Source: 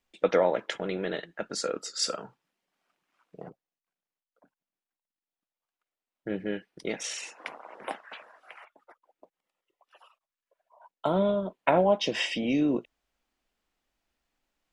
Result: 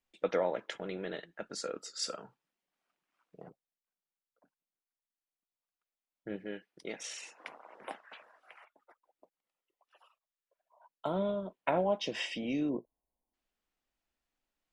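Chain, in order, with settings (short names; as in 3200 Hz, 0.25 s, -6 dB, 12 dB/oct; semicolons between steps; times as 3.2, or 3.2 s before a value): 6.36–7 low shelf 170 Hz -8.5 dB; 12.7–13.33 spectral delete 1100–8900 Hz; gain -7.5 dB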